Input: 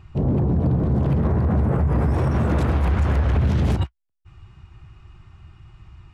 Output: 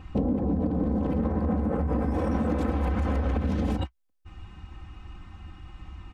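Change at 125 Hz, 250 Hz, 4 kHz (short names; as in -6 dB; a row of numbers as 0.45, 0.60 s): -10.0, -2.5, -6.0 dB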